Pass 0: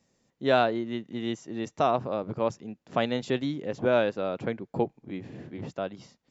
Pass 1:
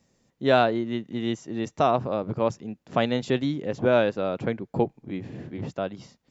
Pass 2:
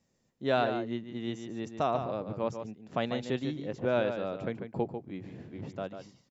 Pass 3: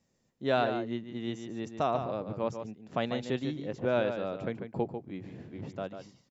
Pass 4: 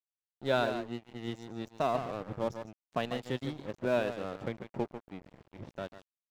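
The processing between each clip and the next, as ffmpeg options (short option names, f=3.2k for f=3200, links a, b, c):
-af "lowshelf=f=150:g=5,volume=2.5dB"
-filter_complex "[0:a]asplit=2[a][b];[b]adelay=145.8,volume=-8dB,highshelf=f=4k:g=-3.28[c];[a][c]amix=inputs=2:normalize=0,volume=-8dB"
-af anull
-af "afftfilt=real='re*pow(10,7/40*sin(2*PI*(1.5*log(max(b,1)*sr/1024/100)/log(2)-(0.96)*(pts-256)/sr)))':imag='im*pow(10,7/40*sin(2*PI*(1.5*log(max(b,1)*sr/1024/100)/log(2)-(0.96)*(pts-256)/sr)))':win_size=1024:overlap=0.75,aeval=exprs='sgn(val(0))*max(abs(val(0))-0.00841,0)':c=same,volume=-1dB"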